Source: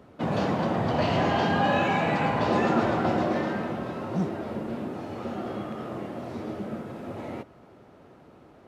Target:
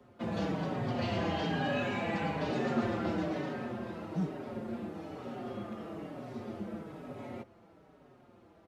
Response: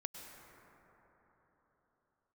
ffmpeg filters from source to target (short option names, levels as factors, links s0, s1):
-filter_complex "[0:a]acrossover=split=200|690|1200[s0][s1][s2][s3];[s2]acompressor=threshold=0.00501:ratio=6[s4];[s0][s1][s4][s3]amix=inputs=4:normalize=0,asplit=2[s5][s6];[s6]adelay=5.1,afreqshift=-1.1[s7];[s5][s7]amix=inputs=2:normalize=1,volume=0.631"